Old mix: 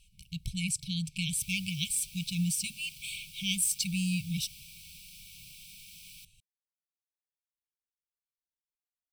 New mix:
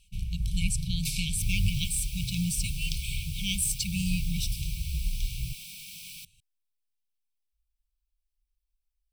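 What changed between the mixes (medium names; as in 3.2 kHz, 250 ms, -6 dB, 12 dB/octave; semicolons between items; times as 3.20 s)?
first sound: remove band-pass filter 560 Hz, Q 4.4; second sound +7.0 dB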